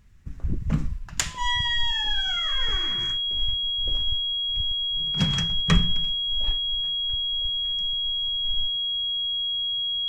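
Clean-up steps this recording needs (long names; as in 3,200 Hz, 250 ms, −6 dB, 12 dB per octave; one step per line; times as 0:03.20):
clipped peaks rebuilt −6 dBFS
notch filter 3,300 Hz, Q 30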